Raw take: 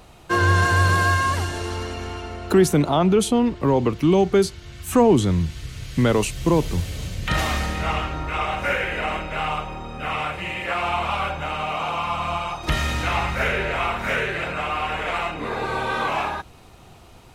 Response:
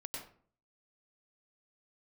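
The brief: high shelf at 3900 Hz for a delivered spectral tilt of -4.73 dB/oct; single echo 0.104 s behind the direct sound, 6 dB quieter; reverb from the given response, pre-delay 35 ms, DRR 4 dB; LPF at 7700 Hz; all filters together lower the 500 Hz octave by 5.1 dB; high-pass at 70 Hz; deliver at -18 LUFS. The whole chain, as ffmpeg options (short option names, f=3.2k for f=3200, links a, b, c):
-filter_complex "[0:a]highpass=70,lowpass=7.7k,equalizer=f=500:t=o:g=-7,highshelf=f=3.9k:g=6,aecho=1:1:104:0.501,asplit=2[a][b];[1:a]atrim=start_sample=2205,adelay=35[c];[b][c]afir=irnorm=-1:irlink=0,volume=-2.5dB[d];[a][d]amix=inputs=2:normalize=0,volume=3dB"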